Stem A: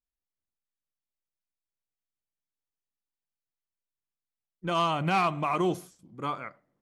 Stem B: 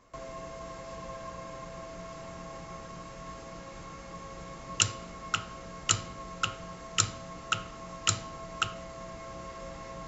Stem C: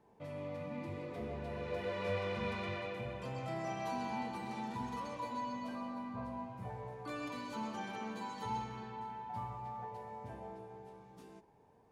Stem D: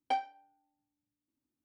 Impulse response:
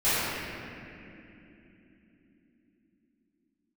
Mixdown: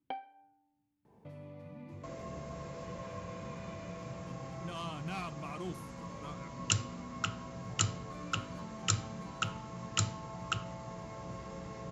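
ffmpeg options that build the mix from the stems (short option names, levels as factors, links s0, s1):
-filter_complex "[0:a]highshelf=f=2300:g=11,volume=0.106,asplit=2[s0][s1];[1:a]highpass=57,adelay=1900,volume=0.531[s2];[2:a]acompressor=threshold=0.00282:ratio=4,adelay=1050,volume=0.891[s3];[3:a]lowpass=f=3100:w=0.5412,lowpass=f=3100:w=1.3066,acompressor=threshold=0.00708:ratio=4,volume=1.19[s4];[s1]apad=whole_len=571961[s5];[s3][s5]sidechaincompress=threshold=0.00398:ratio=8:attack=16:release=657[s6];[s0][s2][s6][s4]amix=inputs=4:normalize=0,equalizer=f=130:t=o:w=2.4:g=8.5"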